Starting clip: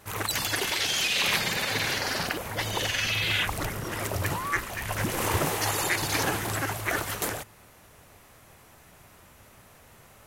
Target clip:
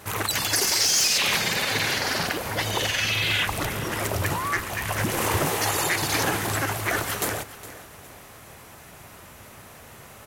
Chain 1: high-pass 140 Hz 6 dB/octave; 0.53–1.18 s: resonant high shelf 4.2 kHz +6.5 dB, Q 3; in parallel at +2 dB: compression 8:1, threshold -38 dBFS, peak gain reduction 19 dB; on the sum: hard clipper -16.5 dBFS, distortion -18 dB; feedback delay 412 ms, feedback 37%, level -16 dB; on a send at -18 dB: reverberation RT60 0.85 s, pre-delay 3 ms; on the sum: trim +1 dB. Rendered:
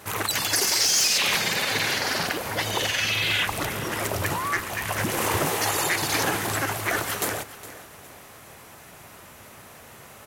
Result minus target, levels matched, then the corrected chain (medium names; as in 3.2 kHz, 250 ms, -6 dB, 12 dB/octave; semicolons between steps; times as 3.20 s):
125 Hz band -3.0 dB
high-pass 55 Hz 6 dB/octave; 0.53–1.18 s: resonant high shelf 4.2 kHz +6.5 dB, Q 3; in parallel at +2 dB: compression 8:1, threshold -38 dBFS, peak gain reduction 19 dB; on the sum: hard clipper -16.5 dBFS, distortion -18 dB; feedback delay 412 ms, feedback 37%, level -16 dB; on a send at -18 dB: reverberation RT60 0.85 s, pre-delay 3 ms; on the sum: trim +1 dB